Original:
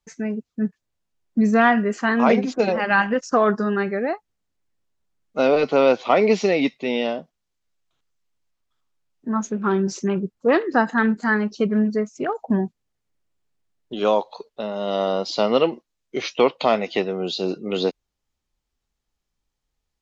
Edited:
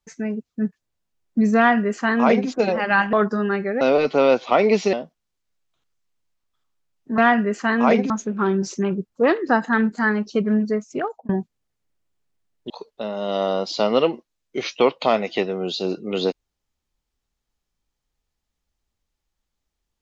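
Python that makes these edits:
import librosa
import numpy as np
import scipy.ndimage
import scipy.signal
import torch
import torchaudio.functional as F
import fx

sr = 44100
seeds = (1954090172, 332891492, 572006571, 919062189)

y = fx.edit(x, sr, fx.duplicate(start_s=1.57, length_s=0.92, to_s=9.35),
    fx.cut(start_s=3.13, length_s=0.27),
    fx.cut(start_s=4.08, length_s=1.31),
    fx.cut(start_s=6.51, length_s=0.59),
    fx.fade_out_span(start_s=12.27, length_s=0.27),
    fx.cut(start_s=13.95, length_s=0.34), tone=tone)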